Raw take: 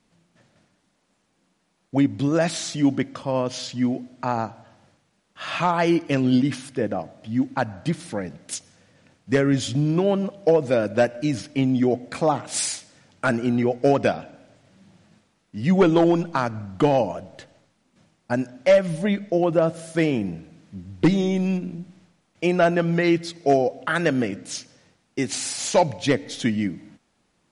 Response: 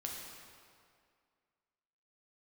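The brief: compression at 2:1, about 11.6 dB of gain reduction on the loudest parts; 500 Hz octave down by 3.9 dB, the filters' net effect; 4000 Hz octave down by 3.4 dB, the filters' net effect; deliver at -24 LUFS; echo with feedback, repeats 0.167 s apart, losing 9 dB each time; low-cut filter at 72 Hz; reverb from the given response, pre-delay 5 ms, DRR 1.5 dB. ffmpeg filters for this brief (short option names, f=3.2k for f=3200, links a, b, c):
-filter_complex "[0:a]highpass=72,equalizer=f=500:t=o:g=-5,equalizer=f=4k:t=o:g=-4.5,acompressor=threshold=-37dB:ratio=2,aecho=1:1:167|334|501|668:0.355|0.124|0.0435|0.0152,asplit=2[a][b];[1:a]atrim=start_sample=2205,adelay=5[c];[b][c]afir=irnorm=-1:irlink=0,volume=-1.5dB[d];[a][d]amix=inputs=2:normalize=0,volume=8dB"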